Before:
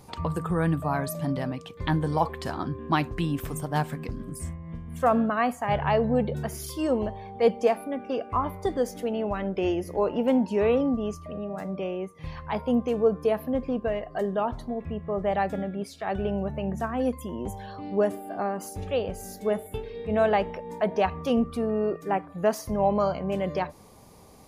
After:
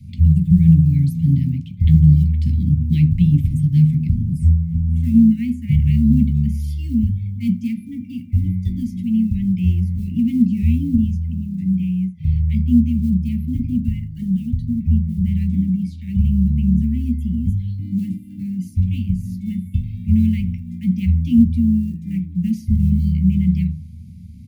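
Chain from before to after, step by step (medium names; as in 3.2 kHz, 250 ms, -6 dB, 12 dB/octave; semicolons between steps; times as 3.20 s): treble shelf 6 kHz -10 dB; speakerphone echo 80 ms, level -24 dB; short-mantissa float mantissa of 4-bit; Chebyshev band-stop 270–2100 Hz, order 5; bass shelf 460 Hz +7.5 dB; on a send at -5 dB: reverberation RT60 0.35 s, pre-delay 6 ms; on the sum: trim -3 dB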